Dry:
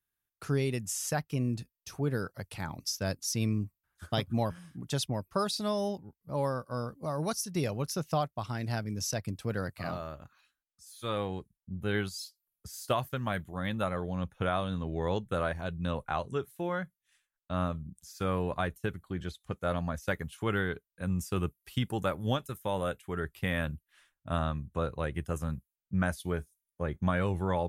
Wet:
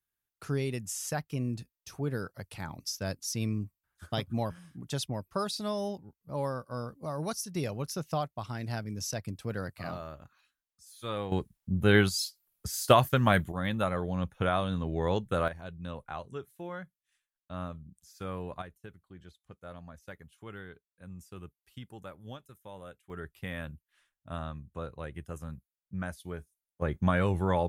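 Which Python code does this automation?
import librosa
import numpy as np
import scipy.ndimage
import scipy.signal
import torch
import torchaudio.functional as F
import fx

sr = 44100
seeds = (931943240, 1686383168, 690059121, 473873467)

y = fx.gain(x, sr, db=fx.steps((0.0, -2.0), (11.32, 9.0), (13.52, 2.0), (15.48, -7.0), (18.62, -14.5), (23.1, -7.0), (26.82, 2.5)))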